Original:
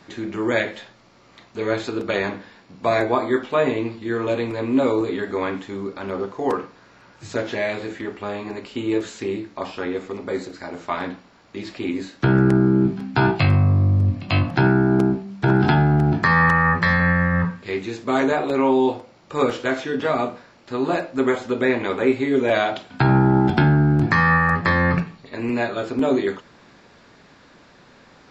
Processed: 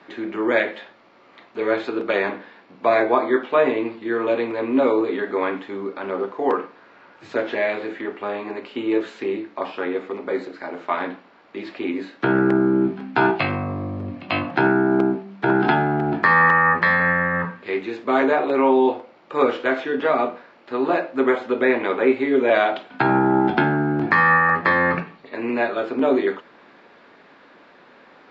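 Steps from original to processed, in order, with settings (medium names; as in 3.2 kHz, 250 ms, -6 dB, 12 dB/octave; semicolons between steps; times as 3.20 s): three-band isolator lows -20 dB, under 230 Hz, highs -22 dB, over 3.6 kHz; trim +2.5 dB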